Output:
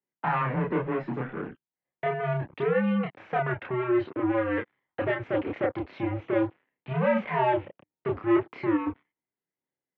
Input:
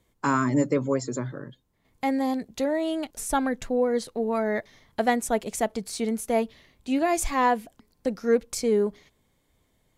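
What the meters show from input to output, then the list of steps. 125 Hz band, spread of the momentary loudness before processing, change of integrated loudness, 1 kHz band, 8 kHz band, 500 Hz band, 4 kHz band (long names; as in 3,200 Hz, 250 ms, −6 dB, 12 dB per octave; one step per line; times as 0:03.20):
+4.0 dB, 9 LU, −2.0 dB, −2.5 dB, below −40 dB, −2.0 dB, −8.5 dB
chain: leveller curve on the samples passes 5
single-sideband voice off tune −120 Hz 310–2,700 Hz
multi-voice chorus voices 2, 0.36 Hz, delay 30 ms, depth 1 ms
level −8.5 dB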